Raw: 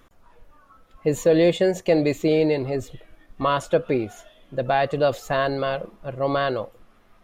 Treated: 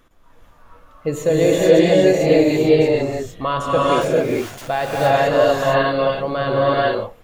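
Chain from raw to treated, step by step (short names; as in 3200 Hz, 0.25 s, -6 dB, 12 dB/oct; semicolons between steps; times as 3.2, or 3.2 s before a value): 4.01–4.68 wrapped overs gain 31.5 dB; non-linear reverb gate 0.48 s rising, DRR -6.5 dB; gain -1 dB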